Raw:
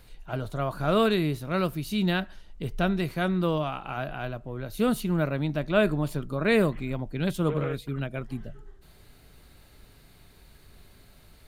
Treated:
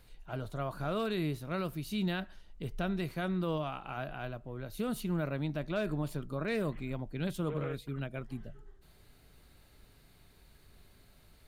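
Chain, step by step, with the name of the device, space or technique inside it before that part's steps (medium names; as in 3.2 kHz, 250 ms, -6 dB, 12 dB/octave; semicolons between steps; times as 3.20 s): clipper into limiter (hard clipper -13.5 dBFS, distortion -27 dB; peak limiter -18.5 dBFS, peak gain reduction 5 dB); trim -6.5 dB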